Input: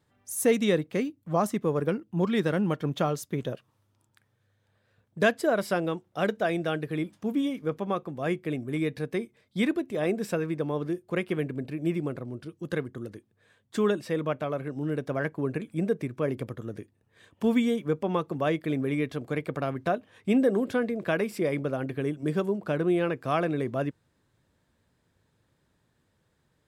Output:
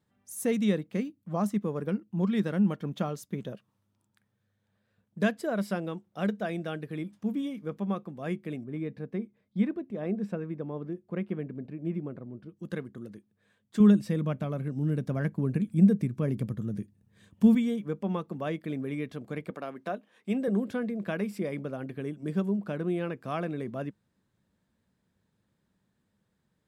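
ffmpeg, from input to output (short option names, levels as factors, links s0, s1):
-filter_complex "[0:a]asettb=1/sr,asplit=3[s0][s1][s2];[s0]atrim=end=8.644[s3];[s1]atrim=start=8.64:end=12.57,asetpts=PTS-STARTPTS,afade=t=in:d=0.004:c=qsin,afade=t=out:st=3.926:d=0.004:c=qsin,lowpass=f=1200:p=1[s4];[s2]atrim=start=12.566[s5];[s3][s4]acrossfade=d=0.004:c1=hsin:c2=qsin[s6];[s6][s5]acrossfade=d=0.004:c1=qsin:c2=hsin,asettb=1/sr,asplit=3[s7][s8][s9];[s7]atrim=end=13.804[s10];[s8]atrim=start=13.8:end=17.55,asetpts=PTS-STARTPTS,afade=t=in:d=0.004:c=qsin,afade=t=out:st=3.746:d=0.004:c=qsin,bass=f=250:g=12,treble=f=4000:g=6[s11];[s9]atrim=start=17.546[s12];[s10][s11]acrossfade=d=0.004:c1=hsin:c2=qsin[s13];[s13][s12]acrossfade=d=0.004:c1=qsin:c2=hsin,asettb=1/sr,asplit=3[s14][s15][s16];[s14]atrim=end=19.504[s17];[s15]atrim=start=19.5:end=20.48,asetpts=PTS-STARTPTS,afade=t=in:d=0.004:c=qsin,afade=t=out:st=0.976:d=0.004:c=qsin,highpass=290[s18];[s16]atrim=start=20.476[s19];[s17][s18]acrossfade=d=0.004:c1=hsin:c2=qsin[s20];[s20][s19]acrossfade=d=0.004:c1=qsin:c2=hsin,equalizer=f=200:w=3.9:g=12,volume=0.447"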